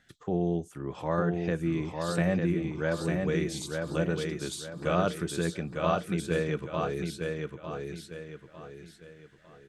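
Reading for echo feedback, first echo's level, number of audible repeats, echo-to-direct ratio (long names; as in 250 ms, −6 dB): 37%, −4.0 dB, 4, −3.5 dB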